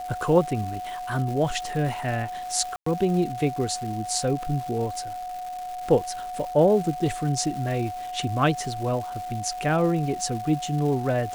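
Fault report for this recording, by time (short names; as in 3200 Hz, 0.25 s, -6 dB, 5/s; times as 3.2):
crackle 550/s -34 dBFS
tone 730 Hz -31 dBFS
2.76–2.86 gap 0.104 s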